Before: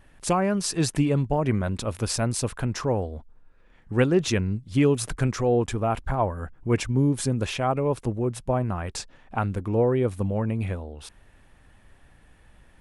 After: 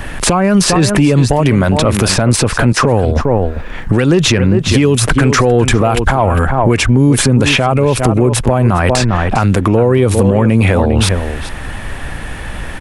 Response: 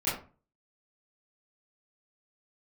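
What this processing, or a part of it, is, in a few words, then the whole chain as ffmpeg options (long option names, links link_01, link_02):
mastering chain: -filter_complex "[0:a]asettb=1/sr,asplit=3[link_01][link_02][link_03];[link_01]atrim=end=2.724[link_04];[link_02]atrim=start=2.72:end=3.16,asetpts=PTS-STARTPTS,afade=type=in:duration=0.004:curve=qsin,afade=type=out:start_time=0.436:duration=0.004:curve=qsin,agate=range=-21dB:threshold=-32dB:ratio=16:detection=peak[link_05];[link_03]atrim=start=3.156[link_06];[link_04][link_05]acrossfade=duration=0.004:curve1=hsin:curve2=qsin[link_07];[link_07][link_06]acrossfade=duration=0.004:curve1=qsin:curve2=hsin,equalizer=frequency=1900:width_type=o:width=2.2:gain=2.5,asplit=2[link_08][link_09];[link_09]adelay=402.3,volume=-14dB,highshelf=frequency=4000:gain=-9.05[link_10];[link_08][link_10]amix=inputs=2:normalize=0,acrossover=split=150|3000[link_11][link_12][link_13];[link_11]acompressor=threshold=-38dB:ratio=4[link_14];[link_12]acompressor=threshold=-30dB:ratio=4[link_15];[link_13]acompressor=threshold=-44dB:ratio=4[link_16];[link_14][link_15][link_16]amix=inputs=3:normalize=0,acompressor=threshold=-36dB:ratio=2,asoftclip=type=tanh:threshold=-24.5dB,alimiter=level_in=32dB:limit=-1dB:release=50:level=0:latency=1,volume=-1.5dB"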